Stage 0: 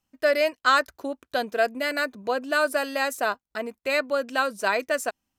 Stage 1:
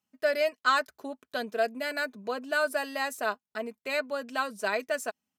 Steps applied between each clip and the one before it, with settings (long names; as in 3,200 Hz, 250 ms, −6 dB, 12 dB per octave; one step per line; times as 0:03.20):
high-pass filter 89 Hz 24 dB per octave
comb filter 4.7 ms, depth 44%
level −6 dB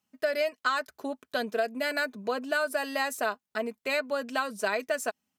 downward compressor 6 to 1, threshold −28 dBFS, peak gain reduction 9 dB
level +4 dB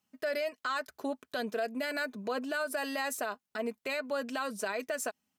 brickwall limiter −24.5 dBFS, peak gain reduction 9.5 dB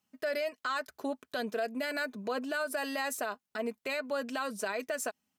no processing that can be heard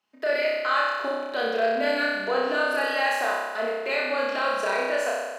three-way crossover with the lows and the highs turned down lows −20 dB, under 310 Hz, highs −16 dB, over 4,900 Hz
flutter between parallel walls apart 5.3 metres, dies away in 1.4 s
level +5.5 dB